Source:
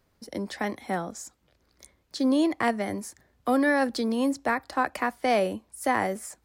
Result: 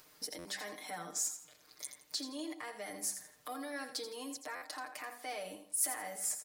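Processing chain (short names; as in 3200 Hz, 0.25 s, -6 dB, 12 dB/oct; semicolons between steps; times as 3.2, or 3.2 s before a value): high shelf 8100 Hz -7.5 dB; compressor 2.5:1, threshold -46 dBFS, peak gain reduction 17.5 dB; de-hum 49.12 Hz, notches 16; limiter -37 dBFS, peak gain reduction 10.5 dB; RIAA curve recording; comb 6.6 ms, depth 90%; thinning echo 83 ms, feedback 29%, high-pass 230 Hz, level -9.5 dB; upward compressor, threshold -58 dBFS; stuck buffer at 0.38/4.55, samples 512, times 5; gain +1.5 dB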